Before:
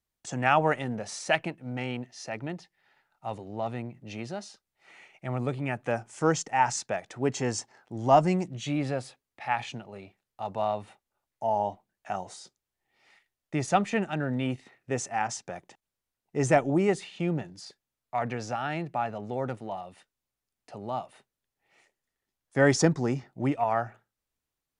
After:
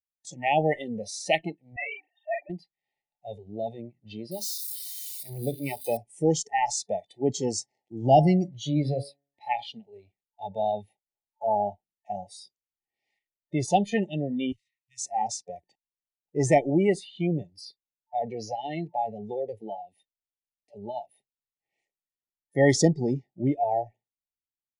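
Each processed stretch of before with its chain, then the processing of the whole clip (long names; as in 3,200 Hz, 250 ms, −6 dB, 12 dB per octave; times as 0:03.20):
0:01.76–0:02.50: three sine waves on the formant tracks + high-pass filter 610 Hz 24 dB per octave + double-tracking delay 40 ms −4 dB
0:04.31–0:05.97: spike at every zero crossing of −29 dBFS + mains-hum notches 50/100/150/200/250/300/350/400 Hz
0:07.54–0:09.56: hum removal 140.9 Hz, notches 15 + dynamic equaliser 150 Hz, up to +6 dB, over −43 dBFS, Q 2.3
0:14.52–0:15.01: Chebyshev band-stop filter 120–2,300 Hz + guitar amp tone stack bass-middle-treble 10-0-10
whole clip: noise reduction from a noise print of the clip's start 21 dB; brick-wall band-stop 890–1,800 Hz; automatic gain control gain up to 4 dB; level −1.5 dB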